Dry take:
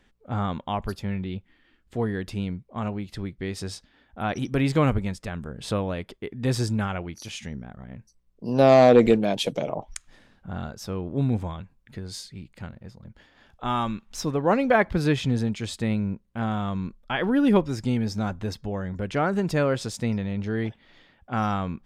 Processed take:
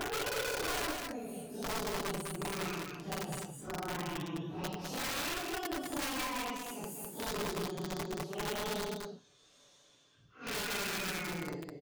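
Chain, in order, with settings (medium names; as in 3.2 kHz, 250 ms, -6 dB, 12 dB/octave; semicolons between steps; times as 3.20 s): gliding tape speed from 91% -> 191%; high-pass 53 Hz 24 dB/octave; peaking EQ 900 Hz -4.5 dB 0.29 oct; compression 5:1, threshold -25 dBFS, peak gain reduction 12.5 dB; Paulstretch 4.7×, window 0.05 s, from 12.99 s; integer overflow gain 22.5 dB; comb 6.9 ms, depth 31%; delay 205 ms -4.5 dB; trim -9 dB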